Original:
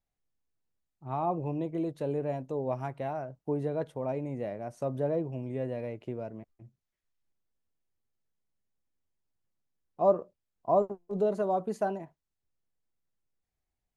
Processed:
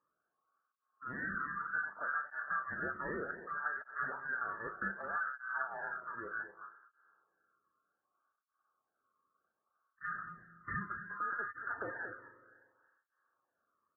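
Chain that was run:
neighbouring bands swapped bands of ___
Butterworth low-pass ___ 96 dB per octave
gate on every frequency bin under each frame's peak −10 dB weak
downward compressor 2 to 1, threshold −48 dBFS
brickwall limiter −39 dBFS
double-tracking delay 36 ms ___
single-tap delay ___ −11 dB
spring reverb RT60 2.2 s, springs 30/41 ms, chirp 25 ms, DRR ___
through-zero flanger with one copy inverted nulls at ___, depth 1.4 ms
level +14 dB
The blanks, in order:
1,000 Hz, 1,600 Hz, −9.5 dB, 229 ms, 13 dB, 0.65 Hz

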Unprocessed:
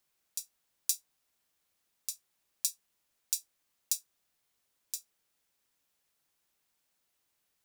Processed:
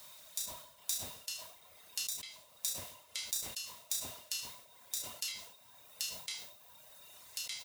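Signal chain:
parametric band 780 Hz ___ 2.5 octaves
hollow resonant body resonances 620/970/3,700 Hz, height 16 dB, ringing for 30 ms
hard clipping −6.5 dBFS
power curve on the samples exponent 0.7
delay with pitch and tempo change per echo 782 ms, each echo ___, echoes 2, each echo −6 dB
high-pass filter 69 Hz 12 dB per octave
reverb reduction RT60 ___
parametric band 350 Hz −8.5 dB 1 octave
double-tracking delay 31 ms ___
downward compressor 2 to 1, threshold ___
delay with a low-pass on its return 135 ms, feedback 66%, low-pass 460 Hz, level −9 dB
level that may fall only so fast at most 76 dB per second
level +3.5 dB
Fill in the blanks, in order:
−6.5 dB, −5 semitones, 1.7 s, −7 dB, −50 dBFS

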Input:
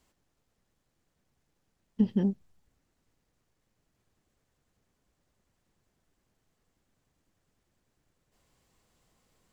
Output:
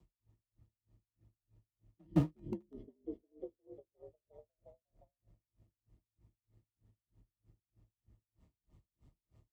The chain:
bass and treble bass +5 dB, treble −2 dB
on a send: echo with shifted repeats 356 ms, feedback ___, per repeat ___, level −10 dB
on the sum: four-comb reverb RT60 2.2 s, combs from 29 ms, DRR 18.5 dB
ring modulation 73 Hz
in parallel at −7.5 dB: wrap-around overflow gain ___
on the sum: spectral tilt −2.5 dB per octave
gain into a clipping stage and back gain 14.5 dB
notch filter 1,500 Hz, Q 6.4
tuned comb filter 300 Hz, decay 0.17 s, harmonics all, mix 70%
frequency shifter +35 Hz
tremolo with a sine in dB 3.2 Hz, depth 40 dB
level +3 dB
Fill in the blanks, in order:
63%, +49 Hz, 26.5 dB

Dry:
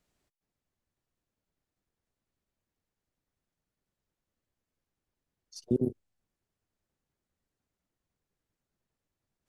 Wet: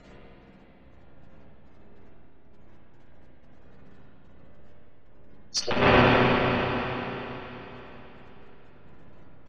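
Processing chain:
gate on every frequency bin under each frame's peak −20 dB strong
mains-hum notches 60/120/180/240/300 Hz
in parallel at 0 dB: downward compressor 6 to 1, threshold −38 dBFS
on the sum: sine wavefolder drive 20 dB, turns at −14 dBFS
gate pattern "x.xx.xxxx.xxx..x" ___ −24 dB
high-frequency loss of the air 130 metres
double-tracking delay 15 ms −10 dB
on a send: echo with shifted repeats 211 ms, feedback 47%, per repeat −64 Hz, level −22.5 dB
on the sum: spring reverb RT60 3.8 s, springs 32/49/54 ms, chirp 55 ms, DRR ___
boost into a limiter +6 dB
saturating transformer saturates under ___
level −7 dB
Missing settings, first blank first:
92 BPM, −7 dB, 87 Hz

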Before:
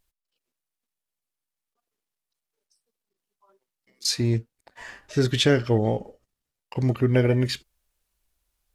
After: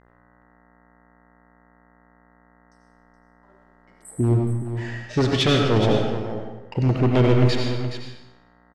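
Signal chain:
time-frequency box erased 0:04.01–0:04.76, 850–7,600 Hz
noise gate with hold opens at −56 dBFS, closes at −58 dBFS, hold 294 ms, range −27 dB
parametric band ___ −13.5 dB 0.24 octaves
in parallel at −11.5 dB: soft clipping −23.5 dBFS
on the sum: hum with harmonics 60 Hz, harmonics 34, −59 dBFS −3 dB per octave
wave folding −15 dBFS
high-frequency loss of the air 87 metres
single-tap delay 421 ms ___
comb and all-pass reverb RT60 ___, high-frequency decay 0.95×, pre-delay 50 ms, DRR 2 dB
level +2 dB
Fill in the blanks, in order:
1,100 Hz, −10 dB, 0.84 s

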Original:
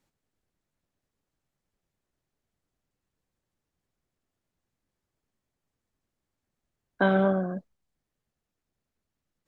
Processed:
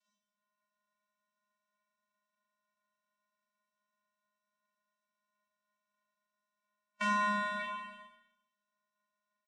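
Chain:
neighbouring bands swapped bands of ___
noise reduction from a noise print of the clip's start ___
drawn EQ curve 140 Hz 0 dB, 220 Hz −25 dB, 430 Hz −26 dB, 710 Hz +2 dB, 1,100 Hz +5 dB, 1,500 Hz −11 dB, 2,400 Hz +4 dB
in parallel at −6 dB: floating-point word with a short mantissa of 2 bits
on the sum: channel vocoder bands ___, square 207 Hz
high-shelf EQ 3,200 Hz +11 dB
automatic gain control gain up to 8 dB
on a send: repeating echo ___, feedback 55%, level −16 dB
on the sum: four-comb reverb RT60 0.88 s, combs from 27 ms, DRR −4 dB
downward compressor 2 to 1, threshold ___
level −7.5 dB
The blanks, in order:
1,000 Hz, 17 dB, 4, 100 ms, −34 dBFS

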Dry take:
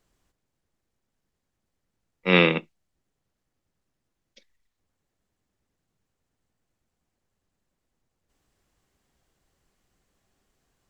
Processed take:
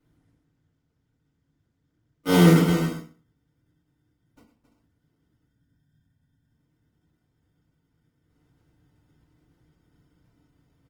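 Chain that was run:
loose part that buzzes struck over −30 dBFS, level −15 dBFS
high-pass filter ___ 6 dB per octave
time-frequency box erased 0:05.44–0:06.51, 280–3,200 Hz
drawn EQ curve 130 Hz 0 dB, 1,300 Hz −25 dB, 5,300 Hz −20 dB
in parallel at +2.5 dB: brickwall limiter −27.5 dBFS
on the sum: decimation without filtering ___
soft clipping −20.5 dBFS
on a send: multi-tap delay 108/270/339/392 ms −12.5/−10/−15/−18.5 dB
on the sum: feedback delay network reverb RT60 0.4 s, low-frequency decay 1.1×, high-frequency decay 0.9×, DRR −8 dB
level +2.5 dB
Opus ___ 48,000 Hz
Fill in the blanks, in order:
160 Hz, 26×, 24 kbit/s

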